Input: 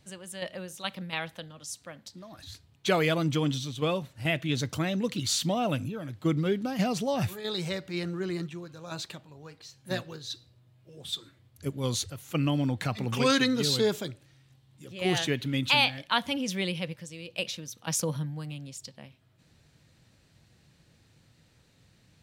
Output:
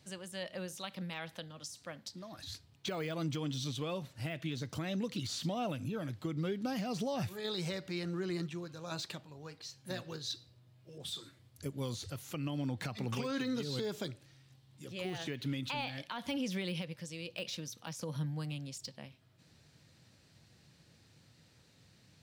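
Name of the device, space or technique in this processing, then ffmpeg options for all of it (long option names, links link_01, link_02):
broadcast voice chain: -filter_complex "[0:a]asettb=1/sr,asplit=3[link_01][link_02][link_03];[link_01]atrim=end=10.984[link_04];[link_02]atrim=start=10.98:end=11.96,asetpts=PTS-STARTPTS,afade=type=in:duration=0.004:curve=qsin,afade=type=out:start_time=0.976:duration=0.004:curve=qsin,adynamicequalizer=threshold=0.00224:dfrequency=9400:dqfactor=0.83:tfrequency=9400:tqfactor=0.83:attack=5:release=100:ratio=0.375:range=3:mode=boostabove:tftype=bell[link_05];[link_03]atrim=start=11.956[link_06];[link_04][link_05]acrossfade=duration=0.004:curve1=hsin:curve2=qsin[link_07];[link_07][link_06]acrossfade=duration=0.004:curve1=qsin:curve2=hsin,highpass=74,deesser=0.95,acompressor=threshold=-29dB:ratio=4,equalizer=frequency=5000:width_type=o:width=0.6:gain=4,alimiter=level_in=1.5dB:limit=-24dB:level=0:latency=1:release=199,volume=-1.5dB,volume=-1.5dB"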